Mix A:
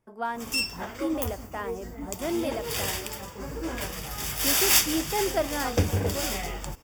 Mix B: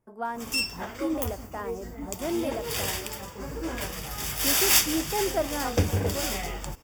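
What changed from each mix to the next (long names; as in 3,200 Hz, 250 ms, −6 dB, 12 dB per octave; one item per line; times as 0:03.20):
speech: add parametric band 3,400 Hz −8 dB 1.8 octaves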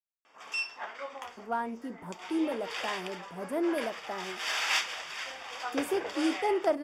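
speech: entry +1.30 s
background: add band-pass filter 780–3,100 Hz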